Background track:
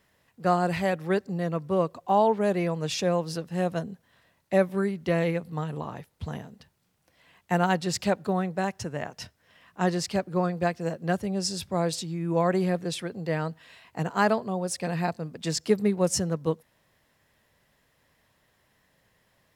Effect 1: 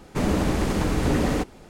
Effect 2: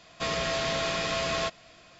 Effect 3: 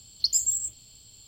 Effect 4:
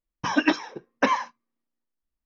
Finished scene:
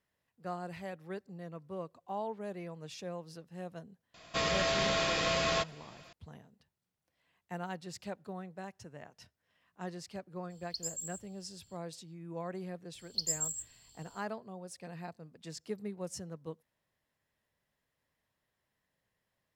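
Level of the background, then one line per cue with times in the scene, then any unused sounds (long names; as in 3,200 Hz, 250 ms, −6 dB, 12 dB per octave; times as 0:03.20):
background track −16.5 dB
0:04.14: mix in 2 −1.5 dB
0:10.50: mix in 3 −15.5 dB
0:12.94: mix in 3 −9.5 dB
not used: 1, 4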